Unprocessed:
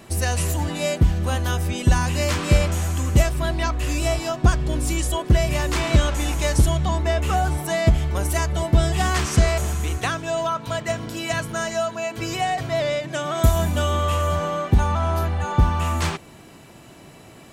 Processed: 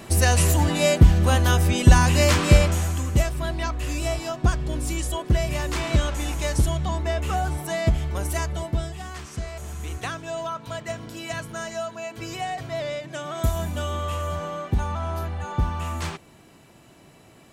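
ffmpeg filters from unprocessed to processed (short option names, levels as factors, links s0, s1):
-af "volume=4.22,afade=t=out:st=2.28:d=0.81:silence=0.398107,afade=t=out:st=8.44:d=0.55:silence=0.281838,afade=t=in:st=9.52:d=0.44:silence=0.375837"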